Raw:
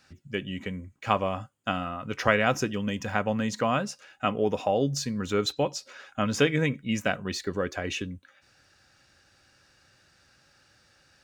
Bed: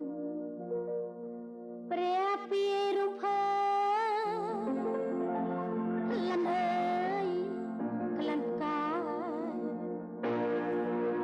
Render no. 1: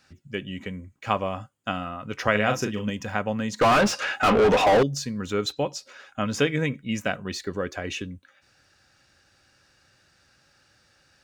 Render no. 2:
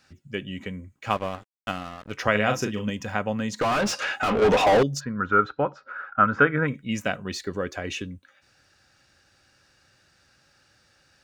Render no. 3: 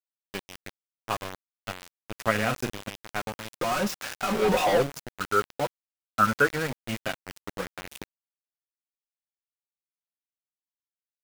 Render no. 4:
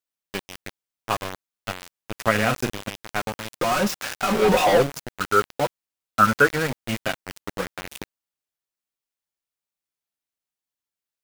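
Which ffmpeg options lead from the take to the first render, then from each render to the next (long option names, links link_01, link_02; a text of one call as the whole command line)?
ffmpeg -i in.wav -filter_complex "[0:a]asettb=1/sr,asplit=3[link_01][link_02][link_03];[link_01]atrim=end=2.314[link_04];[link_02]atrim=start=2.31:end=2.9,asetpts=PTS-STARTPTS,afade=type=in:duration=0.004:curve=qsin,afade=type=out:start_time=0.586:duration=0.004:curve=qsin,asplit=2[link_05][link_06];[link_06]adelay=38,volume=-6dB[link_07];[link_05][link_07]amix=inputs=2:normalize=0,atrim=end_sample=26019[link_08];[link_03]atrim=start=2.896[link_09];[link_04][link_08]acrossfade=duration=0.004:curve1=hsin:curve2=qsin[link_10];[link_10][link_09]acrossfade=duration=0.004:curve1=qsin:curve2=hsin,asettb=1/sr,asplit=3[link_11][link_12][link_13];[link_11]atrim=end=3.614[link_14];[link_12]atrim=start=3.61:end=4.83,asetpts=PTS-STARTPTS,afade=type=in:duration=0.004:curve=qsin,afade=type=out:start_time=1.216:duration=0.004:curve=qsin,asplit=2[link_15][link_16];[link_16]highpass=frequency=720:poles=1,volume=35dB,asoftclip=type=tanh:threshold=-10.5dB[link_17];[link_15][link_17]amix=inputs=2:normalize=0,lowpass=frequency=1900:poles=1,volume=-6dB[link_18];[link_13]atrim=start=4.826[link_19];[link_14][link_18]acrossfade=duration=0.004:curve1=hsin:curve2=qsin[link_20];[link_20][link_19]acrossfade=duration=0.004:curve1=qsin:curve2=hsin" out.wav
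ffmpeg -i in.wav -filter_complex "[0:a]asettb=1/sr,asplit=3[link_01][link_02][link_03];[link_01]atrim=end=1.104[link_04];[link_02]atrim=start=1.1:end=2.12,asetpts=PTS-STARTPTS,afade=type=in:duration=0.004:curve=qsin,afade=type=out:start_time=1.016:duration=0.004:curve=qsin,aeval=exprs='sgn(val(0))*max(abs(val(0))-0.0126,0)':channel_layout=same[link_05];[link_03]atrim=start=2.116[link_06];[link_04][link_05]acrossfade=duration=0.004:curve1=hsin:curve2=qsin[link_07];[link_07][link_06]acrossfade=duration=0.004:curve1=qsin:curve2=hsin,asettb=1/sr,asplit=3[link_08][link_09][link_10];[link_08]atrim=end=3.474[link_11];[link_09]atrim=start=3.47:end=4.42,asetpts=PTS-STARTPTS,afade=type=in:duration=0.004:curve=qsin,afade=type=out:start_time=0.946:duration=0.004:curve=qsin,acompressor=threshold=-21dB:ratio=5:attack=3.2:release=140:knee=1:detection=peak[link_12];[link_10]atrim=start=4.416[link_13];[link_11][link_12]acrossfade=duration=0.004:curve1=hsin:curve2=qsin[link_14];[link_14][link_13]acrossfade=duration=0.004:curve1=qsin:curve2=hsin,asplit=3[link_15][link_16][link_17];[link_15]afade=type=out:start_time=4.99:duration=0.02[link_18];[link_16]lowpass=frequency=1400:width_type=q:width=8,afade=type=in:start_time=4.99:duration=0.02,afade=type=out:start_time=6.67:duration=0.02[link_19];[link_17]afade=type=in:start_time=6.67:duration=0.02[link_20];[link_18][link_19][link_20]amix=inputs=3:normalize=0" out.wav
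ffmpeg -i in.wav -af "flanger=delay=5.1:depth=3.9:regen=26:speed=0.24:shape=sinusoidal,aeval=exprs='val(0)*gte(abs(val(0)),0.0398)':channel_layout=same" out.wav
ffmpeg -i in.wav -af "volume=5dB,alimiter=limit=-2dB:level=0:latency=1" out.wav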